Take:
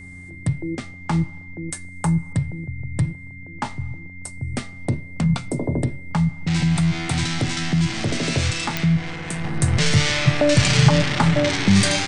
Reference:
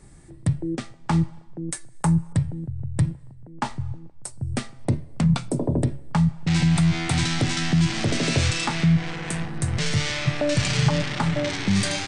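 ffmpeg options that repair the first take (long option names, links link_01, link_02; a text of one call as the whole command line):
ffmpeg -i in.wav -af "adeclick=threshold=4,bandreject=frequency=90.3:width_type=h:width=4,bandreject=frequency=180.6:width_type=h:width=4,bandreject=frequency=270.9:width_type=h:width=4,bandreject=frequency=2100:width=30,asetnsamples=nb_out_samples=441:pad=0,asendcmd='9.44 volume volume -6dB',volume=0dB" out.wav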